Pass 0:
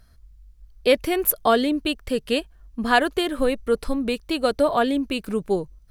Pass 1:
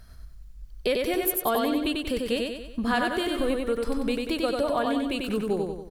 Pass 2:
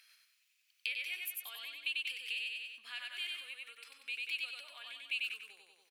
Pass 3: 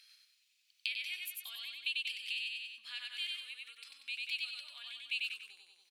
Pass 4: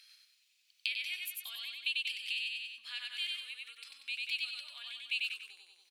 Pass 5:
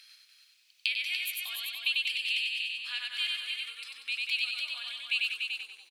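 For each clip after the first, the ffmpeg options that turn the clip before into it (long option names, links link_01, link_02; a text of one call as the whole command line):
ffmpeg -i in.wav -filter_complex "[0:a]acompressor=threshold=-34dB:ratio=2.5,asplit=2[link_01][link_02];[link_02]aecho=0:1:94|188|282|376|470|564:0.708|0.347|0.17|0.0833|0.0408|0.02[link_03];[link_01][link_03]amix=inputs=2:normalize=0,volume=4.5dB" out.wav
ffmpeg -i in.wav -af "acompressor=threshold=-33dB:ratio=5,highpass=frequency=2500:width_type=q:width=5.2,volume=-5dB" out.wav
ffmpeg -i in.wav -af "equalizer=frequency=500:width_type=o:width=1:gain=-8,equalizer=frequency=4000:width_type=o:width=1:gain=10,equalizer=frequency=8000:width_type=o:width=1:gain=4,volume=-5dB" out.wav
ffmpeg -i in.wav -af "highpass=240,volume=2dB" out.wav
ffmpeg -i in.wav -filter_complex "[0:a]equalizer=frequency=1000:width_type=o:width=2.9:gain=2.5,asplit=2[link_01][link_02];[link_02]aecho=0:1:291:0.531[link_03];[link_01][link_03]amix=inputs=2:normalize=0,volume=4dB" out.wav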